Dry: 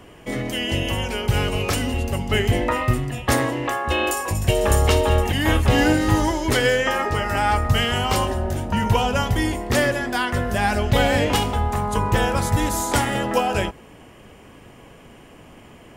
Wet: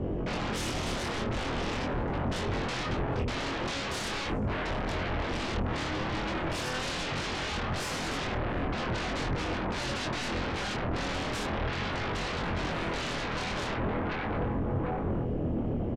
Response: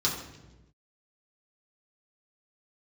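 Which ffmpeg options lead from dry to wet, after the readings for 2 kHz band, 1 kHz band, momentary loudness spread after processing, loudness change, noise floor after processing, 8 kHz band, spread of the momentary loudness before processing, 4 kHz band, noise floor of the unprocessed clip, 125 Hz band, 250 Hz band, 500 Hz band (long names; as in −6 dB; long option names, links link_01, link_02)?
−10.0 dB, −11.0 dB, 1 LU, −11.0 dB, −34 dBFS, −12.5 dB, 6 LU, −9.0 dB, −46 dBFS, −11.5 dB, −9.0 dB, −11.5 dB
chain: -filter_complex "[0:a]asplit=2[link_01][link_02];[link_02]adelay=742,lowpass=frequency=1200:poles=1,volume=-14dB,asplit=2[link_03][link_04];[link_04]adelay=742,lowpass=frequency=1200:poles=1,volume=0.41,asplit=2[link_05][link_06];[link_06]adelay=742,lowpass=frequency=1200:poles=1,volume=0.41,asplit=2[link_07][link_08];[link_08]adelay=742,lowpass=frequency=1200:poles=1,volume=0.41[link_09];[link_01][link_03][link_05][link_07][link_09]amix=inputs=5:normalize=0,areverse,acompressor=threshold=-27dB:ratio=8,areverse,asoftclip=type=tanh:threshold=-31dB,lowpass=5300,afwtdn=0.00708,aemphasis=mode=reproduction:type=50kf,aeval=exprs='0.0355*sin(PI/2*3.55*val(0)/0.0355)':channel_layout=same,flanger=delay=22.5:depth=2.8:speed=0.41,lowshelf=frequency=490:gain=7"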